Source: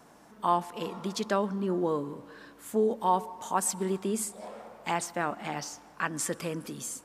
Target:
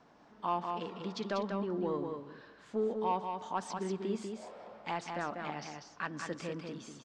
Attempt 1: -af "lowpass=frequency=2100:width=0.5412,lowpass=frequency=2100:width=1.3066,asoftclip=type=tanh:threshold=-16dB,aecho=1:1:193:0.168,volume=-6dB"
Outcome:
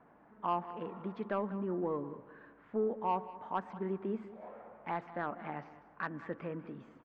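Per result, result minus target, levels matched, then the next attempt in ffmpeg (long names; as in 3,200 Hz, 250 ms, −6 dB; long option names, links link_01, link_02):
4,000 Hz band −11.5 dB; echo-to-direct −10.5 dB
-af "lowpass=frequency=5200:width=0.5412,lowpass=frequency=5200:width=1.3066,asoftclip=type=tanh:threshold=-16dB,aecho=1:1:193:0.168,volume=-6dB"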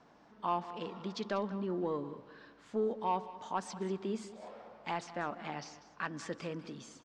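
echo-to-direct −10.5 dB
-af "lowpass=frequency=5200:width=0.5412,lowpass=frequency=5200:width=1.3066,asoftclip=type=tanh:threshold=-16dB,aecho=1:1:193:0.562,volume=-6dB"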